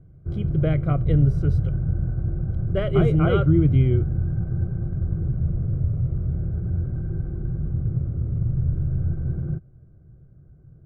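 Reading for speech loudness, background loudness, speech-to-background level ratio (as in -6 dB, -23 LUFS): -22.0 LUFS, -26.0 LUFS, 4.0 dB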